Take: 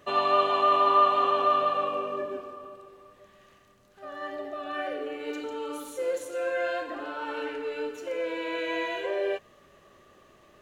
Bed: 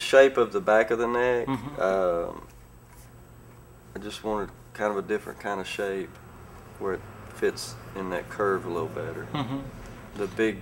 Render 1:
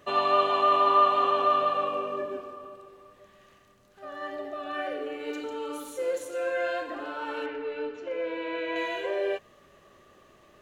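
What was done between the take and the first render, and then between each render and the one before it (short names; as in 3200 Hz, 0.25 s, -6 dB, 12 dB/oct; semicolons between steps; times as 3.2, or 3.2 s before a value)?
7.46–8.76 air absorption 190 m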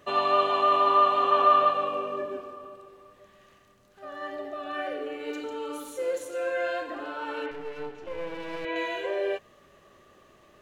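1.31–1.71 bell 1300 Hz +4.5 dB 2.1 oct; 7.51–8.65 half-wave gain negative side -12 dB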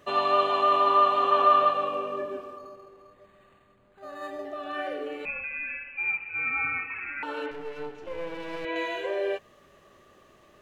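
2.58–4.45 decimation joined by straight lines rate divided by 8×; 5.25–7.23 inverted band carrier 2900 Hz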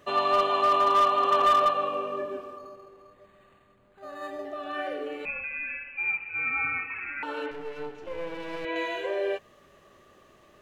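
hard clip -16.5 dBFS, distortion -18 dB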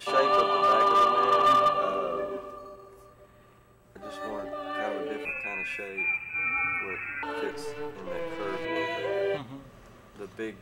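add bed -11 dB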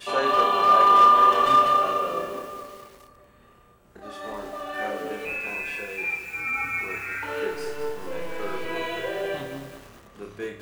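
flutter echo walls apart 5 m, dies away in 0.4 s; lo-fi delay 0.207 s, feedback 55%, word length 7-bit, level -8 dB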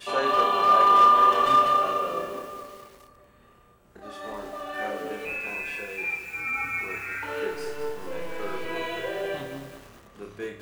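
gain -1.5 dB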